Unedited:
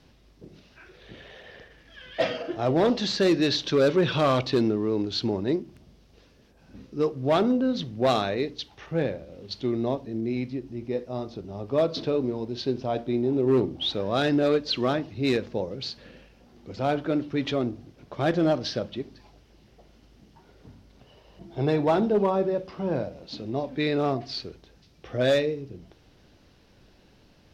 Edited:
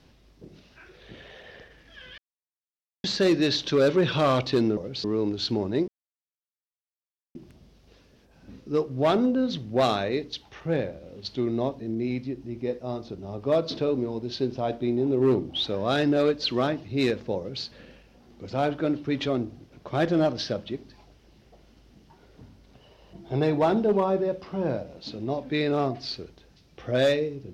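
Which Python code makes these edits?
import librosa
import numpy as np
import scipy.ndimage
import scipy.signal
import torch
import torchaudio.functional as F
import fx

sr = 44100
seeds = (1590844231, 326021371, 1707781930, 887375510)

y = fx.edit(x, sr, fx.silence(start_s=2.18, length_s=0.86),
    fx.insert_silence(at_s=5.61, length_s=1.47),
    fx.duplicate(start_s=15.64, length_s=0.27, to_s=4.77), tone=tone)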